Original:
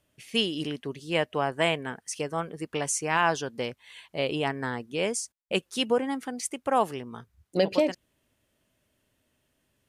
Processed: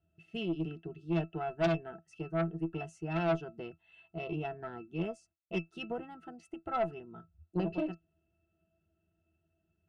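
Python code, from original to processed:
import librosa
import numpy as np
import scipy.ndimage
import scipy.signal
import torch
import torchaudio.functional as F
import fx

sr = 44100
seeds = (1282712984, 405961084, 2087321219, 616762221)

y = fx.octave_resonator(x, sr, note='E', decay_s=0.13)
y = fx.cheby_harmonics(y, sr, harmonics=(4, 5, 6), levels_db=(-14, -15, -13), full_scale_db=-20.0)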